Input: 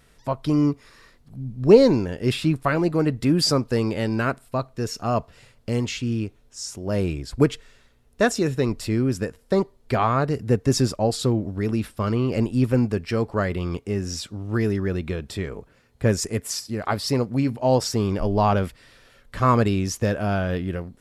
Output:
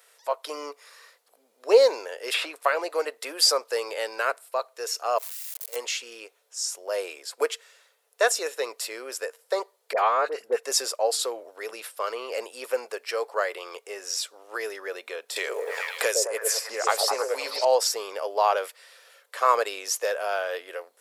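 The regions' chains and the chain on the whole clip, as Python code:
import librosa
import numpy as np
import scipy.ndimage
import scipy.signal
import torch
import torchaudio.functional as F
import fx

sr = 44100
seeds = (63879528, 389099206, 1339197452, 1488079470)

y = fx.chain(x, sr, fx.high_shelf(hz=5200.0, db=-5.5),
    fx.band_squash(depth_pct=70), at=(2.34, 3.05))
y = fx.chain(y, sr, fx.crossing_spikes(level_db=-20.5),
    fx.level_steps(step_db=22), at=(5.18, 5.76))
y = fx.chain(y, sr, fx.bass_treble(bass_db=12, treble_db=-6),
    fx.dispersion(late='highs', ms=45.0, hz=1200.0), at=(9.93, 10.63))
y = fx.chain(y, sr, fx.echo_stepped(ms=104, hz=490.0, octaves=0.7, feedback_pct=70, wet_db=-0.5),
    fx.band_squash(depth_pct=100), at=(15.36, 17.65))
y = scipy.signal.sosfilt(scipy.signal.ellip(4, 1.0, 70, 480.0, 'highpass', fs=sr, output='sos'), y)
y = fx.high_shelf(y, sr, hz=6900.0, db=10.5)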